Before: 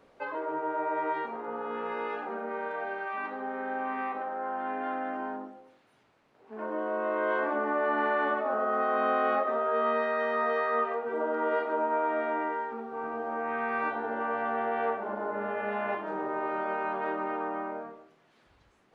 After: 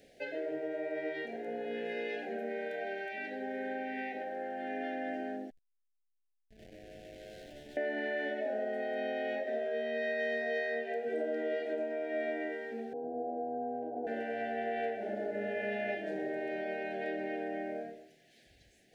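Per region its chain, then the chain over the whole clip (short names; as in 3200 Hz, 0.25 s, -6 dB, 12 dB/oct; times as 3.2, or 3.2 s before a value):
5.5–7.77 tone controls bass -7 dB, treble 0 dB + compressor 2.5:1, threshold -50 dBFS + backlash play -39.5 dBFS
12.93–14.07 steep low-pass 1200 Hz 72 dB/oct + frequency shift +17 Hz
whole clip: compressor, threshold -29 dBFS; elliptic band-stop 720–1700 Hz, stop band 70 dB; high shelf 3100 Hz +10.5 dB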